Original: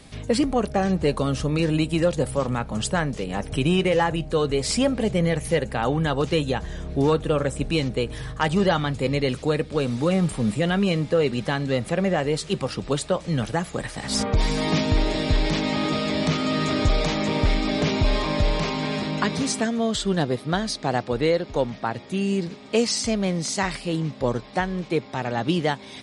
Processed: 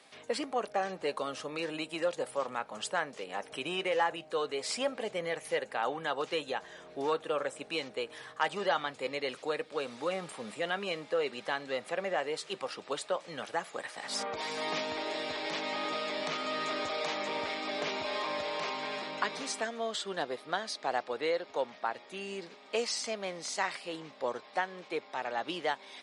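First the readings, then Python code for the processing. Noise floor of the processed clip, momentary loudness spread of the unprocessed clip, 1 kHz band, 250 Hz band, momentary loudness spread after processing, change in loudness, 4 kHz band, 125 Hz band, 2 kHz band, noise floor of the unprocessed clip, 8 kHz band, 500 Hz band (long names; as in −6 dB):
−54 dBFS, 5 LU, −6.0 dB, −19.5 dB, 5 LU, −11.0 dB, −8.0 dB, −28.5 dB, −6.5 dB, −41 dBFS, −10.5 dB, −10.0 dB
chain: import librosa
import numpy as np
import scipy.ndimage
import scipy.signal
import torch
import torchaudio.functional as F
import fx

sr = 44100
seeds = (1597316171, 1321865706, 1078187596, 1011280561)

y = scipy.signal.sosfilt(scipy.signal.butter(2, 590.0, 'highpass', fs=sr, output='sos'), x)
y = fx.high_shelf(y, sr, hz=4400.0, db=-7.5)
y = y * 10.0 ** (-5.0 / 20.0)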